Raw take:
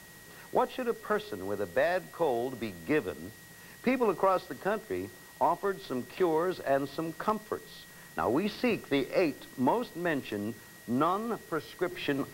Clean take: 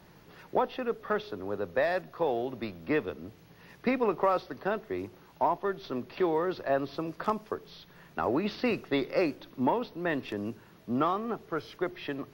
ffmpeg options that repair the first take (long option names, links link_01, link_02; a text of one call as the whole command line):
ffmpeg -i in.wav -af "bandreject=frequency=1900:width=30,afwtdn=0.002,asetnsamples=nb_out_samples=441:pad=0,asendcmd='11.91 volume volume -5dB',volume=0dB" out.wav